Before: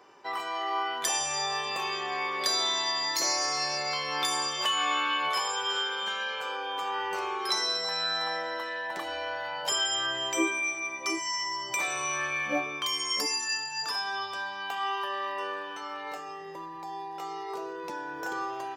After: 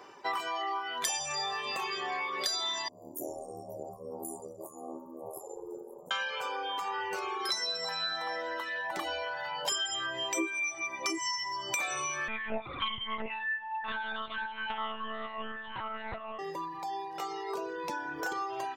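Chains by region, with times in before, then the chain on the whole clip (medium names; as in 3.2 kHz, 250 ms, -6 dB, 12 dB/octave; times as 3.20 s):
2.88–6.11 s: inverse Chebyshev band-stop 1.7–4.1 kHz, stop band 70 dB + ring modulator 40 Hz + delay 534 ms -19.5 dB
12.28–16.39 s: de-hum 75.96 Hz, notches 34 + monotone LPC vocoder at 8 kHz 220 Hz + loudspeaker Doppler distortion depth 0.11 ms
whole clip: compression 4:1, threshold -34 dBFS; reverb removal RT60 1.3 s; trim +5 dB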